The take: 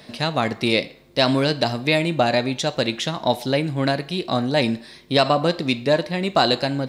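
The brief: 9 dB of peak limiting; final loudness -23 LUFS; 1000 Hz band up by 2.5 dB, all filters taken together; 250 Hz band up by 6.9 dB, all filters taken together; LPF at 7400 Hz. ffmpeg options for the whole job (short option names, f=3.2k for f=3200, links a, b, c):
-af "lowpass=7.4k,equalizer=f=250:t=o:g=8,equalizer=f=1k:t=o:g=3,volume=-1.5dB,alimiter=limit=-12dB:level=0:latency=1"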